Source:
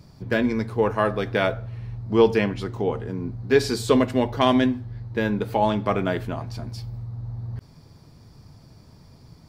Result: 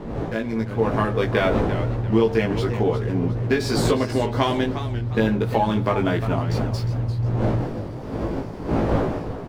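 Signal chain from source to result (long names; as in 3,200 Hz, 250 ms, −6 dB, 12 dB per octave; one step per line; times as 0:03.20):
fade in at the beginning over 1.39 s
wind on the microphone 440 Hz −32 dBFS
downward compressor 5 to 1, threshold −23 dBFS, peak gain reduction 11 dB
slack as between gear wheels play −47 dBFS
double-tracking delay 18 ms −2.5 dB
feedback echo with a swinging delay time 351 ms, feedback 34%, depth 166 cents, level −11 dB
level +4.5 dB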